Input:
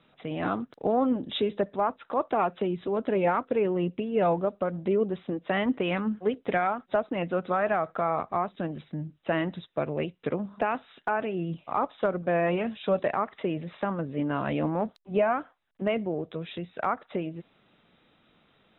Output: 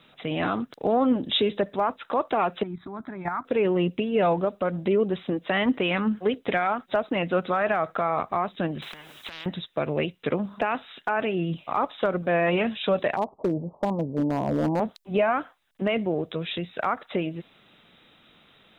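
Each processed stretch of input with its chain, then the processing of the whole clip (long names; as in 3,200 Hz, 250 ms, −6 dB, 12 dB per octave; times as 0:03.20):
0:02.63–0:03.45: output level in coarse steps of 11 dB + phaser with its sweep stopped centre 1,200 Hz, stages 4
0:08.82–0:09.46: high-pass filter 140 Hz + downward compressor, threshold −39 dBFS + every bin compressed towards the loudest bin 10 to 1
0:13.16–0:14.80: Butterworth low-pass 990 Hz 72 dB per octave + hard clipping −22 dBFS
whole clip: high-shelf EQ 2,400 Hz +10 dB; brickwall limiter −18 dBFS; level +4 dB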